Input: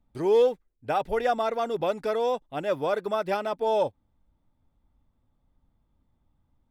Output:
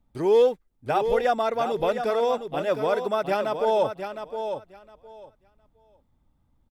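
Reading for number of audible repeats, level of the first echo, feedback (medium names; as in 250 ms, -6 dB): 2, -8.0 dB, 17%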